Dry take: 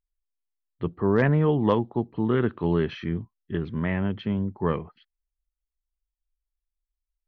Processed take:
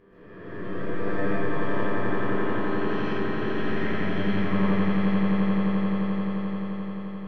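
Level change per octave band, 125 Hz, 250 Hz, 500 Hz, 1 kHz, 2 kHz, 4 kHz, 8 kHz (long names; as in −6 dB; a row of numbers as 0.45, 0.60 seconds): −2.5 dB, +2.5 dB, −1.5 dB, +2.0 dB, +4.5 dB, +3.5 dB, can't be measured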